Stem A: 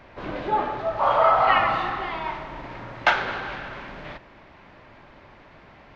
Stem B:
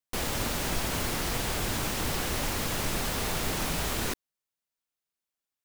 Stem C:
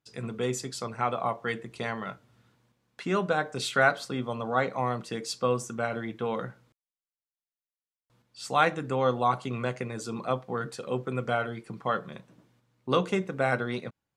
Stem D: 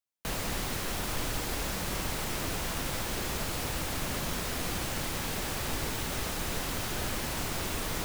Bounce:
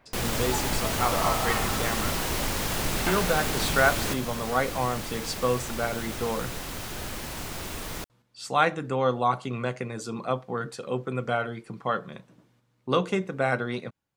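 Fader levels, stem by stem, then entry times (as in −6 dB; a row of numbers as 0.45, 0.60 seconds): −12.0, +1.0, +1.0, −2.0 decibels; 0.00, 0.00, 0.00, 0.00 seconds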